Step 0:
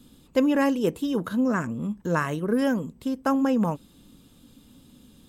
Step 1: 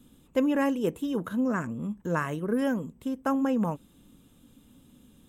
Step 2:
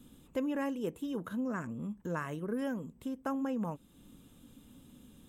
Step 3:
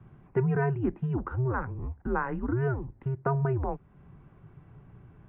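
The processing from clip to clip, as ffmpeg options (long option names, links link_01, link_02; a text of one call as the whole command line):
ffmpeg -i in.wav -af "equalizer=frequency=4600:width=3:gain=-11,volume=-3.5dB" out.wav
ffmpeg -i in.wav -af "acompressor=threshold=-47dB:ratio=1.5" out.wav
ffmpeg -i in.wav -af "highpass=frequency=170:width_type=q:width=0.5412,highpass=frequency=170:width_type=q:width=1.307,lowpass=frequency=2100:width_type=q:width=0.5176,lowpass=frequency=2100:width_type=q:width=0.7071,lowpass=frequency=2100:width_type=q:width=1.932,afreqshift=-130,equalizer=frequency=82:width_type=o:width=0.8:gain=-5.5,volume=8.5dB" out.wav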